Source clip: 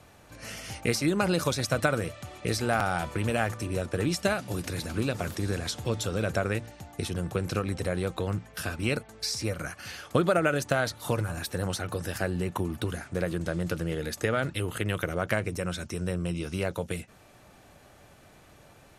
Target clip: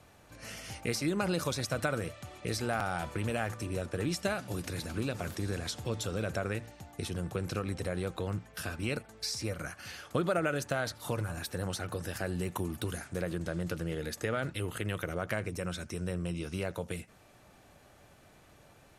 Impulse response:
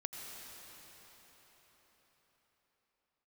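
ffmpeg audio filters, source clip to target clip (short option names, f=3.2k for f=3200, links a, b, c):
-filter_complex "[0:a]asettb=1/sr,asplit=3[a][b][c];[a]atrim=end=12.264[d];[b]atrim=start=12.26:end=13.21,asetpts=PTS-STARTPTS,afade=t=in:d=0.004:c=qsin,afade=t=out:st=0.946:d=0.004:c=qsin,highshelf=f=5.1k:g=8[e];[c]atrim=start=13.206[f];[d][e]acrossfade=d=0.004:c1=hsin:c2=qsin[g];[g][f]acrossfade=d=0.004:c1=qsin:c2=hsin,asplit=2[h][i];[i]alimiter=limit=-20dB:level=0:latency=1,volume=-3dB[j];[h][j]amix=inputs=2:normalize=0[k];[1:a]atrim=start_sample=2205,atrim=end_sample=3528[l];[k][l]afir=irnorm=-1:irlink=0,volume=-5.5dB"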